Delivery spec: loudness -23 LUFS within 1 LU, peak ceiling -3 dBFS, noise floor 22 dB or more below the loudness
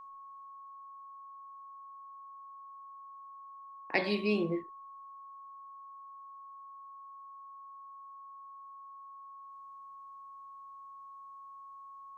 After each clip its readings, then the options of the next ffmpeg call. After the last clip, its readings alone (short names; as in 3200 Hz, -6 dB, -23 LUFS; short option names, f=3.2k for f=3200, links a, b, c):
steady tone 1100 Hz; tone level -47 dBFS; loudness -42.0 LUFS; peak -13.5 dBFS; loudness target -23.0 LUFS
-> -af "bandreject=f=1.1k:w=30"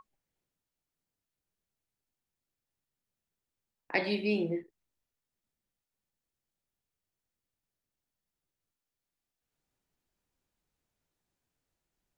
steady tone none; loudness -32.0 LUFS; peak -13.5 dBFS; loudness target -23.0 LUFS
-> -af "volume=9dB"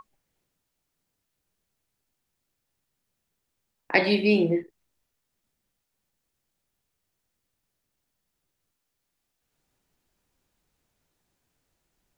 loudness -23.0 LUFS; peak -4.5 dBFS; noise floor -81 dBFS